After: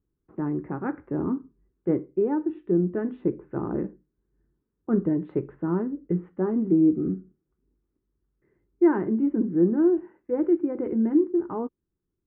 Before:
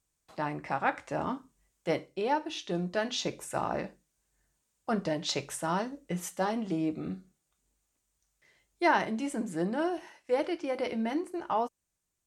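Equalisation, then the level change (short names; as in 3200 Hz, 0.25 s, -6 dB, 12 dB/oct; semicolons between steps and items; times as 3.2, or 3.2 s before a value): inverse Chebyshev low-pass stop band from 5000 Hz, stop band 60 dB; resonant low shelf 490 Hz +9.5 dB, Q 3; -3.0 dB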